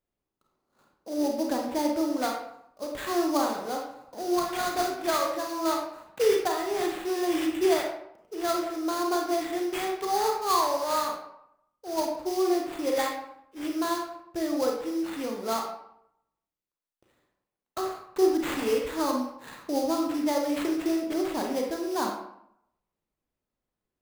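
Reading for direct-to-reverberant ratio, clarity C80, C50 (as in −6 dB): 1.0 dB, 7.0 dB, 3.5 dB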